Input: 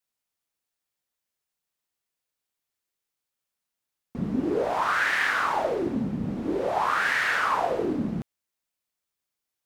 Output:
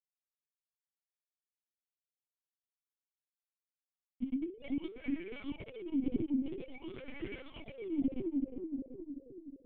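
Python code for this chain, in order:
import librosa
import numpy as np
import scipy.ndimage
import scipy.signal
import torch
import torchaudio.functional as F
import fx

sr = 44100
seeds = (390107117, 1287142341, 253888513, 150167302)

p1 = fx.sine_speech(x, sr)
p2 = fx.low_shelf(p1, sr, hz=300.0, db=-3.0, at=(7.38, 8.08), fade=0.02)
p3 = np.where(np.abs(p2) >= 10.0 ** (-27.5 / 20.0), p2, 0.0)
p4 = p3 + fx.echo_banded(p3, sr, ms=369, feedback_pct=62, hz=410.0, wet_db=-5.5, dry=0)
p5 = fx.over_compress(p4, sr, threshold_db=-28.0, ratio=-0.5)
p6 = fx.formant_cascade(p5, sr, vowel='i')
p7 = fx.lpc_vocoder(p6, sr, seeds[0], excitation='pitch_kept', order=10)
y = F.gain(torch.from_numpy(p7), 2.5).numpy()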